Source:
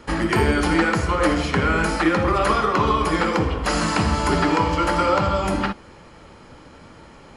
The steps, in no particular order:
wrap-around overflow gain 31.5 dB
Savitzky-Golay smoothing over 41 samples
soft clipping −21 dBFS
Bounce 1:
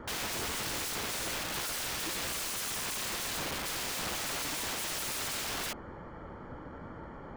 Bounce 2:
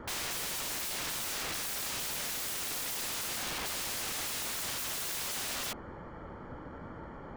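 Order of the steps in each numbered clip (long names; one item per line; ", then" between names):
soft clipping, then Savitzky-Golay smoothing, then wrap-around overflow
Savitzky-Golay smoothing, then wrap-around overflow, then soft clipping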